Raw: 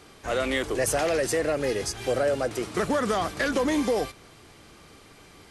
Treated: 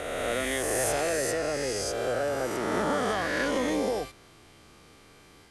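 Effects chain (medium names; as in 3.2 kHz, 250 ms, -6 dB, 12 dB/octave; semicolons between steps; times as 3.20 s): reverse spectral sustain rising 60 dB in 2.32 s; trim -7 dB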